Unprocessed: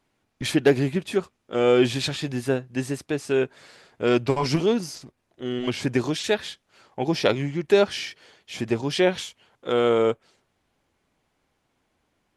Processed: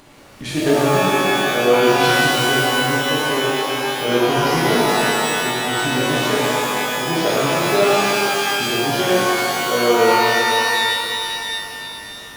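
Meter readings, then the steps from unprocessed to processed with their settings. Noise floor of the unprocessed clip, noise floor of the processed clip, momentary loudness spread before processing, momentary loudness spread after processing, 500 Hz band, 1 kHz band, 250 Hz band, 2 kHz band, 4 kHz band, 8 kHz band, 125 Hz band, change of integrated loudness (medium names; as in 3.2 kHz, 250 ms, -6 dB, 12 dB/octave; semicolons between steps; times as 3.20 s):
-73 dBFS, -34 dBFS, 15 LU, 7 LU, +5.0 dB, +15.5 dB, +4.5 dB, +14.5 dB, +12.5 dB, +14.0 dB, +3.5 dB, +7.0 dB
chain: upward compressor, threshold -27 dBFS; pitch-shifted reverb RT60 3.1 s, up +12 st, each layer -2 dB, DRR -7.5 dB; trim -4.5 dB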